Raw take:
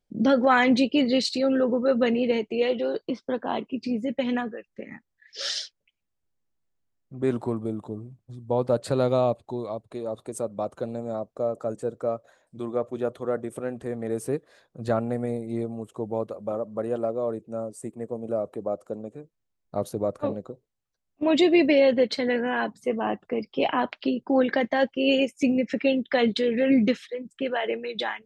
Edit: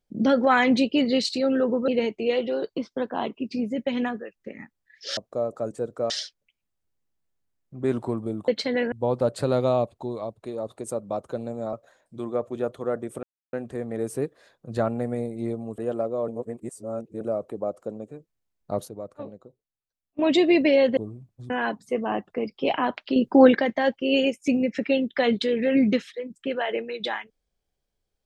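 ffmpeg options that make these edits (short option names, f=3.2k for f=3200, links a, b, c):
-filter_complex "[0:a]asplit=17[a][b][c][d][e][f][g][h][i][j][k][l][m][n][o][p][q];[a]atrim=end=1.882[r];[b]atrim=start=2.198:end=5.492[s];[c]atrim=start=11.208:end=12.142[t];[d]atrim=start=5.488:end=7.872[u];[e]atrim=start=22.008:end=22.452[v];[f]atrim=start=8.398:end=11.212[w];[g]atrim=start=12.138:end=13.64,asetpts=PTS-STARTPTS,afade=t=out:st=1.498:d=0.004:c=hsin,apad=pad_dur=0.3[x];[h]atrim=start=13.64:end=15.892,asetpts=PTS-STARTPTS,afade=t=in:d=0.004:c=hsin[y];[i]atrim=start=16.818:end=17.322[z];[j]atrim=start=17.318:end=18.252,asetpts=PTS-STARTPTS,areverse[aa];[k]atrim=start=18.248:end=19.922[ab];[l]atrim=start=19.918:end=21.232,asetpts=PTS-STARTPTS,volume=-10dB[ac];[m]atrim=start=21.228:end=22.012[ad];[n]atrim=start=7.868:end=8.402[ae];[o]atrim=start=22.448:end=24.112[af];[p]atrim=start=24.108:end=24.502,asetpts=PTS-STARTPTS,volume=7.5dB[ag];[q]atrim=start=24.498[ah];[r][s]acrossfade=d=0.004:c1=hsin:c2=hsin[ai];[ai][t]acrossfade=d=0.004:c1=hsin:c2=hsin[aj];[aj][u]acrossfade=d=0.004:c1=hsin:c2=hsin[ak];[ak][v]acrossfade=d=0.004:c1=hsin:c2=hsin[al];[al][w]acrossfade=d=0.004:c1=hsin:c2=hsin[am];[x][y]concat=n=2:v=0:a=1[an];[am][an]acrossfade=d=0.004:c1=hsin:c2=hsin[ao];[ao][z]acrossfade=d=0.004:c1=hsin:c2=hsin[ap];[ap][aa]acrossfade=d=0.004:c1=hsin:c2=hsin[aq];[aq][ab]acrossfade=d=0.004:c1=hsin:c2=hsin[ar];[ar][ac]acrossfade=d=0.004:c1=hsin:c2=hsin[as];[as][ad]acrossfade=d=0.004:c1=hsin:c2=hsin[at];[at][ae]acrossfade=d=0.004:c1=hsin:c2=hsin[au];[au][af]acrossfade=d=0.004:c1=hsin:c2=hsin[av];[av][ag]acrossfade=d=0.004:c1=hsin:c2=hsin[aw];[aw][ah]acrossfade=d=0.004:c1=hsin:c2=hsin"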